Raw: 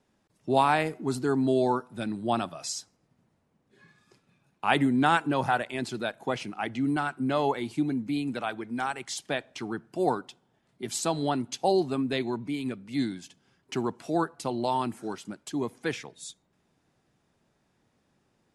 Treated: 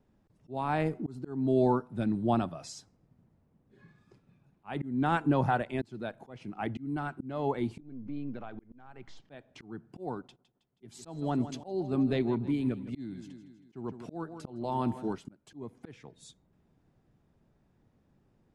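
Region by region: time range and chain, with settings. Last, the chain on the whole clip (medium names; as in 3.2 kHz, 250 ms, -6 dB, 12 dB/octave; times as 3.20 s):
7.80–9.30 s: partial rectifier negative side -3 dB + compression 2.5:1, threshold -39 dBFS + distance through air 150 m
10.22–15.13 s: gate -58 dBFS, range -17 dB + feedback delay 160 ms, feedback 49%, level -16 dB
whole clip: tilt EQ -3 dB/octave; slow attack 404 ms; trim -3.5 dB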